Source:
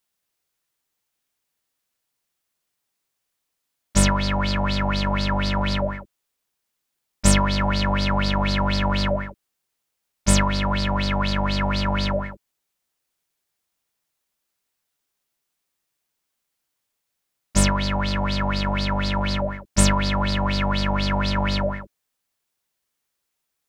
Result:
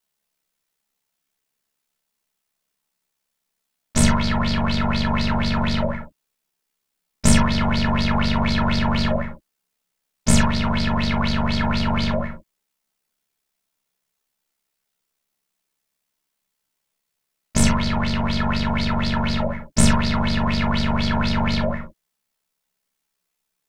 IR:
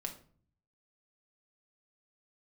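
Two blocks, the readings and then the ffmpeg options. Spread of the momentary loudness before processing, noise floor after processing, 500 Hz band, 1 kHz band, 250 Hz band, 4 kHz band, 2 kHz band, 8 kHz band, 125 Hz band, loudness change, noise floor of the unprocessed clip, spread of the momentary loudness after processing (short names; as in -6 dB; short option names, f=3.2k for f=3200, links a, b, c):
6 LU, -79 dBFS, -0.5 dB, 0.0 dB, +3.5 dB, 0.0 dB, +1.0 dB, +0.5 dB, +2.0 dB, +1.0 dB, -79 dBFS, 7 LU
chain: -filter_complex "[0:a]aeval=exprs='val(0)*sin(2*PI*34*n/s)':c=same[a];[1:a]atrim=start_sample=2205,atrim=end_sample=3087[b];[a][b]afir=irnorm=-1:irlink=0,volume=5dB"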